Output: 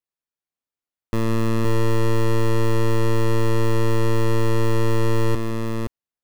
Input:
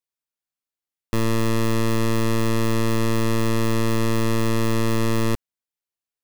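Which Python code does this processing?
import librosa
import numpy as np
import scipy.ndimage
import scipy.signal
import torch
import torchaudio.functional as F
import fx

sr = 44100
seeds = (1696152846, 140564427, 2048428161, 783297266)

p1 = fx.high_shelf(x, sr, hz=2300.0, db=-7.5)
y = p1 + fx.echo_multitap(p1, sr, ms=(160, 520), db=(-16.5, -4.0), dry=0)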